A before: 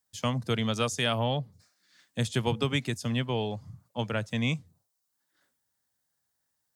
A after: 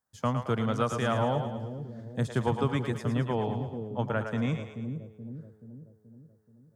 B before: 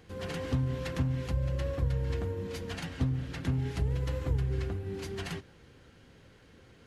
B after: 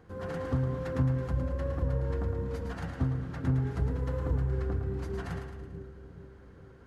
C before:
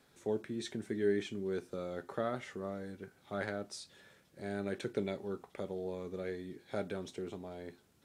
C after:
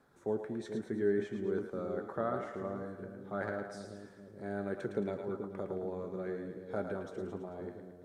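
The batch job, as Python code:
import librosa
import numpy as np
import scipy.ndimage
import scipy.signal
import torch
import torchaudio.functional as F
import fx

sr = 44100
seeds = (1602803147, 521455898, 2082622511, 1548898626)

p1 = fx.high_shelf_res(x, sr, hz=1900.0, db=-9.5, q=1.5)
y = p1 + fx.echo_split(p1, sr, split_hz=460.0, low_ms=429, high_ms=110, feedback_pct=52, wet_db=-6.5, dry=0)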